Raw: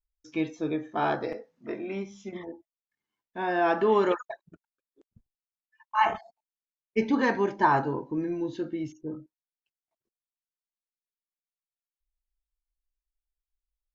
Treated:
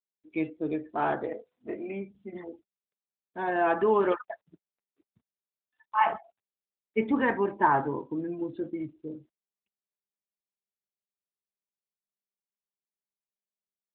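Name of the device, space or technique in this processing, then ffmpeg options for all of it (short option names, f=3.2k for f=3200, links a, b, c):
mobile call with aggressive noise cancelling: -af "highpass=f=160:p=1,afftdn=nr=21:nf=-44" -ar 8000 -c:a libopencore_amrnb -b:a 12200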